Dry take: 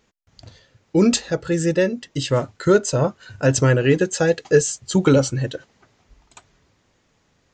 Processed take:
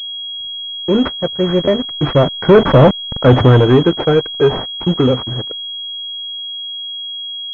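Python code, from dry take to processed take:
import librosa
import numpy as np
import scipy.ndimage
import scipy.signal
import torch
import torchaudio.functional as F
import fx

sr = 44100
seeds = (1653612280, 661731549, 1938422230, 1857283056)

p1 = fx.delta_hold(x, sr, step_db=-30.0)
p2 = fx.doppler_pass(p1, sr, speed_mps=24, closest_m=6.8, pass_at_s=2.87)
p3 = fx.leveller(p2, sr, passes=3)
p4 = np.clip(p3, -10.0 ** (-18.0 / 20.0), 10.0 ** (-18.0 / 20.0))
p5 = p3 + (p4 * 10.0 ** (-3.5 / 20.0))
p6 = fx.buffer_glitch(p5, sr, at_s=(1.64,), block=512, repeats=2)
p7 = fx.pwm(p6, sr, carrier_hz=3300.0)
y = p7 * 10.0 ** (4.0 / 20.0)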